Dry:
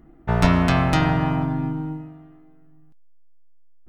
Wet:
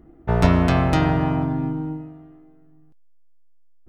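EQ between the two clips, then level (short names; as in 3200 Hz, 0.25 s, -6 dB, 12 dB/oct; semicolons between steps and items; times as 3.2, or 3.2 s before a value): bell 76 Hz +9 dB 0.85 oct; bell 430 Hz +7 dB 1.5 oct; -3.0 dB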